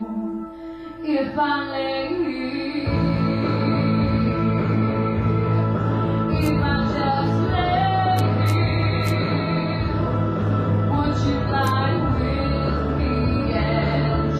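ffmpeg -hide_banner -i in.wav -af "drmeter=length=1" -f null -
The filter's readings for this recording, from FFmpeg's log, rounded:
Channel 1: DR: 6.1
Overall DR: 6.1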